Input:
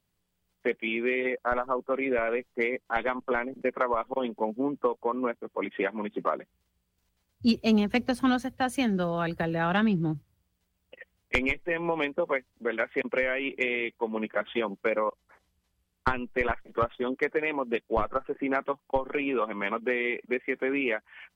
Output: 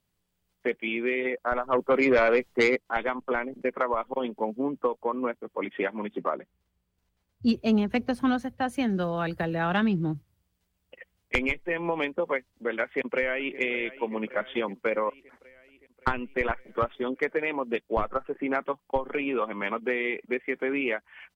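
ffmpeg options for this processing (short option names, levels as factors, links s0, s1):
-filter_complex "[0:a]asplit=3[s0][s1][s2];[s0]afade=t=out:st=1.72:d=0.02[s3];[s1]aeval=exprs='0.178*sin(PI/2*1.58*val(0)/0.178)':c=same,afade=t=in:st=1.72:d=0.02,afade=t=out:st=2.75:d=0.02[s4];[s2]afade=t=in:st=2.75:d=0.02[s5];[s3][s4][s5]amix=inputs=3:normalize=0,asettb=1/sr,asplit=3[s6][s7][s8];[s6]atrim=end=6.194[s9];[s7]atrim=start=6.19:end=8.9,asetpts=PTS-STARTPTS,afade=t=in:d=0.004:c=qsin,afade=t=out:st=2.706:d=0.004:c=qsin,highshelf=f=2700:g=-7[s10];[s8]atrim=start=8.896[s11];[s9][s10]acrossfade=d=0.004:c1=hsin:c2=qsin[s12];[s12][s11]acrossfade=d=0.004:c1=qsin:c2=hsin,asplit=2[s13][s14];[s14]afade=t=in:st=12.83:d=0.01,afade=t=out:st=13.58:d=0.01,aecho=0:1:570|1140|1710|2280|2850|3420|3990:0.158489|0.103018|0.0669617|0.0435251|0.0282913|0.0183894|0.0119531[s15];[s13][s15]amix=inputs=2:normalize=0"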